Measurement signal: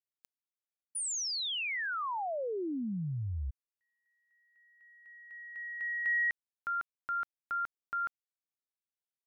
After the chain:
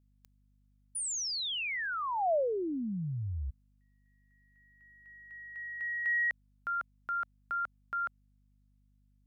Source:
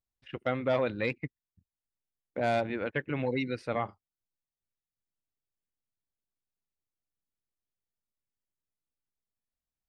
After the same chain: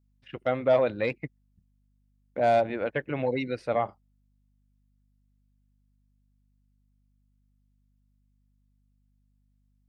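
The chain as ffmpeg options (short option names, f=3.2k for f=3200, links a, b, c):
-af "adynamicequalizer=threshold=0.00562:dfrequency=640:dqfactor=1.7:tfrequency=640:tqfactor=1.7:attack=5:release=100:ratio=0.4:range=4:mode=boostabove:tftype=bell,aeval=exprs='val(0)+0.000447*(sin(2*PI*50*n/s)+sin(2*PI*2*50*n/s)/2+sin(2*PI*3*50*n/s)/3+sin(2*PI*4*50*n/s)/4+sin(2*PI*5*50*n/s)/5)':c=same"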